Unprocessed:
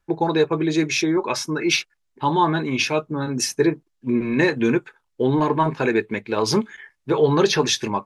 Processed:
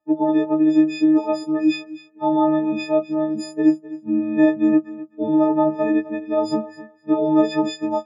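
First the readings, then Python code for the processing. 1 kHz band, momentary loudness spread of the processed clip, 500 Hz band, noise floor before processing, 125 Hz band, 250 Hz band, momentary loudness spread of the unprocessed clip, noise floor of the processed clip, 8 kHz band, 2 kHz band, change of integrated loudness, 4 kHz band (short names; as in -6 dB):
-2.5 dB, 9 LU, -1.0 dB, -72 dBFS, -10.5 dB, +5.0 dB, 7 LU, -50 dBFS, under -15 dB, -9.0 dB, +1.0 dB, -12.0 dB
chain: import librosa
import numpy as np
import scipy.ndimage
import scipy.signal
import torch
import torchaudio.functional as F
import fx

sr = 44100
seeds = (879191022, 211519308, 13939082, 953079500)

y = fx.freq_snap(x, sr, grid_st=6)
y = fx.double_bandpass(y, sr, hz=440.0, octaves=0.81)
y = fx.echo_feedback(y, sr, ms=257, feedback_pct=15, wet_db=-17.0)
y = y * 10.0 ** (8.0 / 20.0)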